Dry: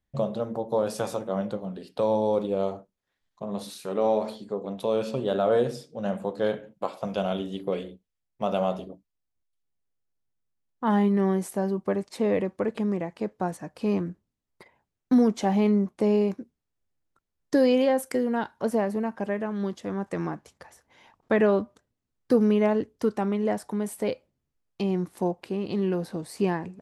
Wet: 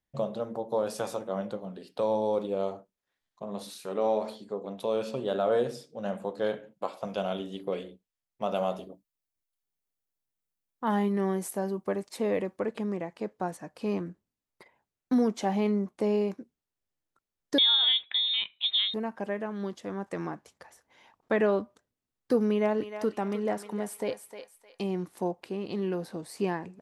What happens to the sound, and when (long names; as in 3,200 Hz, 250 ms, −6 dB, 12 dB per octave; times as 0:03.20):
0:08.55–0:12.58: high-shelf EQ 9,900 Hz +9.5 dB
0:17.58–0:18.94: voice inversion scrambler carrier 3,900 Hz
0:22.47–0:25.10: feedback echo with a high-pass in the loop 307 ms, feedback 35%, high-pass 790 Hz, level −7 dB
whole clip: low-shelf EQ 170 Hz −8 dB; level −2.5 dB